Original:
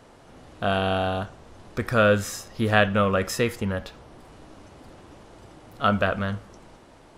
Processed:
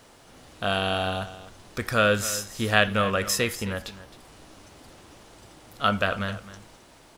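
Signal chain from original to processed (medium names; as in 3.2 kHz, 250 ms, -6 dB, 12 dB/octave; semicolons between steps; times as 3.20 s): word length cut 12-bit, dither none; treble shelf 2.1 kHz +11 dB; on a send: delay 264 ms -15.5 dB; on the sum: trim -4 dB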